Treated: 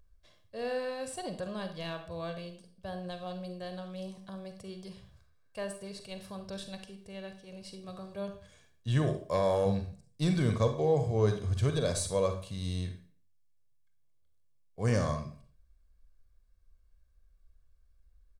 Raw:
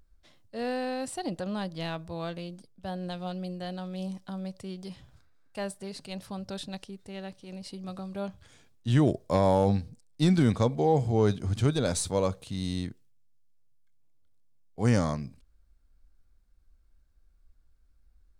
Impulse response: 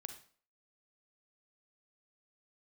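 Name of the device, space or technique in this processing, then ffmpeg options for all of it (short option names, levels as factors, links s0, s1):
microphone above a desk: -filter_complex "[0:a]asettb=1/sr,asplit=3[s0][s1][s2];[s0]atrim=end=9.024[s3];[s1]atrim=start=9.02:end=9.66,asetpts=PTS-STARTPTS,afade=t=in:d=0.004:c=qsin,afade=t=out:st=0.636:d=0.004:c=qsin,lowshelf=f=350:g=-6[s4];[s2]atrim=start=9.656[s5];[s3][s4]acrossfade=d=0.004:c1=hsin:c2=qsin[s6];[s6][s5]acrossfade=d=0.004:c1=qsin:c2=hsin,aecho=1:1:1.8:0.52[s7];[1:a]atrim=start_sample=2205[s8];[s7][s8]afir=irnorm=-1:irlink=0"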